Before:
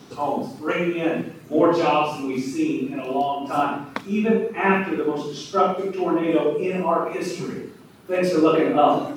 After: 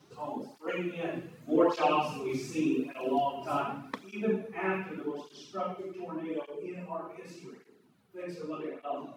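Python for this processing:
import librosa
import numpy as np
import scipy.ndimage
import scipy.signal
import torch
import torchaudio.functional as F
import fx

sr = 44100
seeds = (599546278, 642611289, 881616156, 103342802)

y = fx.doppler_pass(x, sr, speed_mps=7, closest_m=7.6, pass_at_s=2.64)
y = fx.flanger_cancel(y, sr, hz=0.85, depth_ms=4.5)
y = F.gain(torch.from_numpy(y), -3.0).numpy()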